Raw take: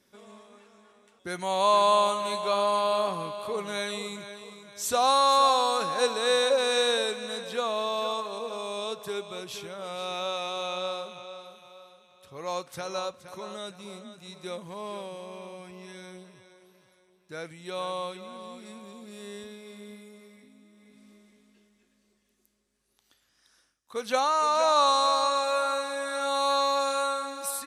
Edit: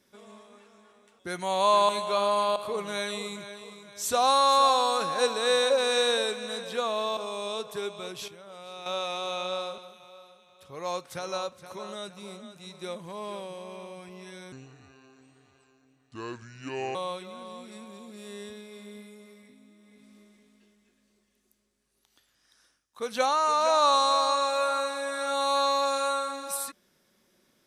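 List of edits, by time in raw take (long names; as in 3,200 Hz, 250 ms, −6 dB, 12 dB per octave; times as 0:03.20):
0:01.89–0:02.25: remove
0:02.92–0:03.36: remove
0:07.97–0:08.49: remove
0:09.60–0:10.18: clip gain −8.5 dB
0:11.10–0:11.40: remove
0:16.14–0:17.89: play speed 72%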